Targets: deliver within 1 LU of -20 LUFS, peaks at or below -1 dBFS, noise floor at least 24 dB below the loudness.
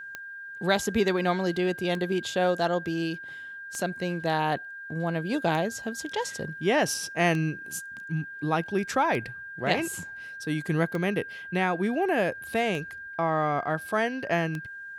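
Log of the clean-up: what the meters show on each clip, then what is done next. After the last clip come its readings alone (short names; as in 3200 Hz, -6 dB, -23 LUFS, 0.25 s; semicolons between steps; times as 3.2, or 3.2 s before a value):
clicks 9; steady tone 1600 Hz; tone level -38 dBFS; loudness -28.0 LUFS; peak -10.5 dBFS; loudness target -20.0 LUFS
-> de-click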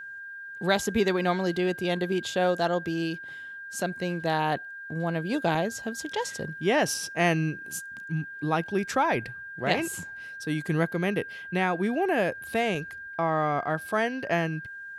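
clicks 0; steady tone 1600 Hz; tone level -38 dBFS
-> notch 1600 Hz, Q 30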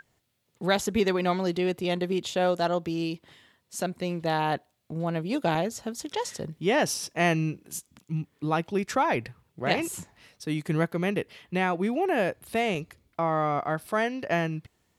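steady tone none; loudness -28.0 LUFS; peak -10.5 dBFS; loudness target -20.0 LUFS
-> gain +8 dB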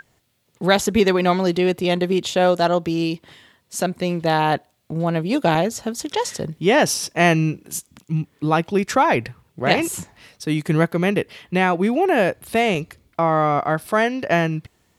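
loudness -20.0 LUFS; peak -2.5 dBFS; noise floor -64 dBFS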